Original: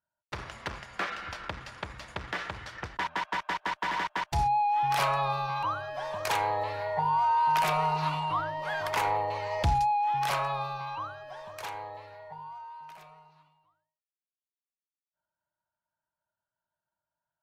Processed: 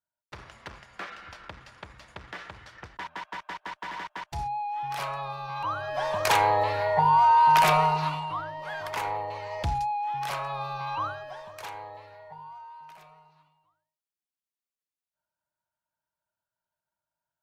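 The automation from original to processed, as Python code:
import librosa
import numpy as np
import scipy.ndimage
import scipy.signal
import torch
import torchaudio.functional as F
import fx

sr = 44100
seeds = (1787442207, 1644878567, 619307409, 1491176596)

y = fx.gain(x, sr, db=fx.line((5.38, -6.0), (5.99, 6.5), (7.74, 6.5), (8.3, -3.0), (10.44, -3.0), (11.08, 7.0), (11.52, -1.0)))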